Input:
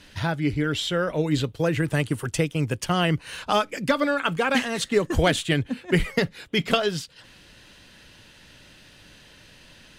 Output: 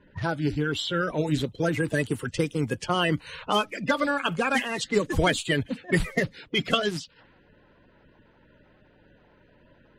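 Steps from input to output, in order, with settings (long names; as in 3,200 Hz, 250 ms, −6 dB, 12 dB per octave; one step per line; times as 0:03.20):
spectral magnitudes quantised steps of 30 dB
low-pass that shuts in the quiet parts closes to 940 Hz, open at −21.5 dBFS
level −1.5 dB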